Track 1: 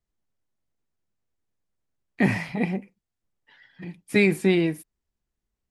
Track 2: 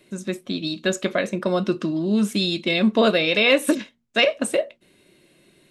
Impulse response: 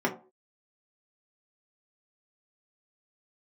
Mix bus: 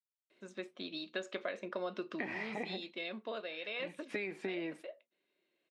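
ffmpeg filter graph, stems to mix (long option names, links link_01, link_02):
-filter_complex "[0:a]agate=range=-33dB:threshold=-50dB:ratio=3:detection=peak,highshelf=frequency=10000:gain=-5.5,acompressor=threshold=-26dB:ratio=4,volume=-2.5dB,asplit=2[link_01][link_02];[1:a]adelay=300,volume=-10.5dB,afade=type=out:start_time=2.74:duration=0.62:silence=0.298538[link_03];[link_02]apad=whole_len=264704[link_04];[link_03][link_04]sidechaincompress=threshold=-31dB:ratio=8:attack=16:release=1410[link_05];[link_01][link_05]amix=inputs=2:normalize=0,highpass=400,lowpass=3900,acompressor=threshold=-35dB:ratio=4"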